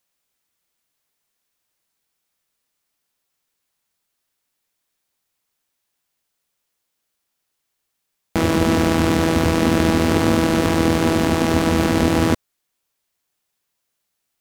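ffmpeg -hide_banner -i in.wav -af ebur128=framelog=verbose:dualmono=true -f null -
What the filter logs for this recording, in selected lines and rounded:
Integrated loudness:
  I:         -14.9 LUFS
  Threshold: -24.9 LUFS
Loudness range:
  LRA:         7.3 LU
  Threshold: -36.5 LUFS
  LRA low:   -21.8 LUFS
  LRA high:  -14.5 LUFS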